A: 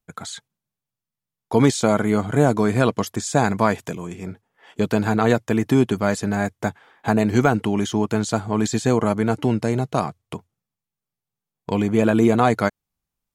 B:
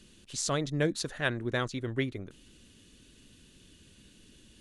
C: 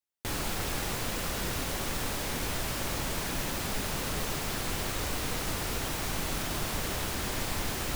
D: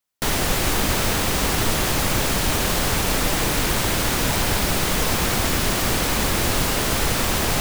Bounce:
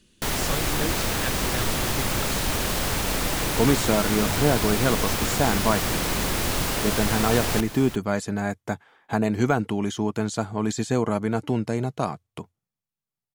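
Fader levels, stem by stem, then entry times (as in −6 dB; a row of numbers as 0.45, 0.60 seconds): −4.5, −3.0, −6.0, −4.5 decibels; 2.05, 0.00, 0.00, 0.00 seconds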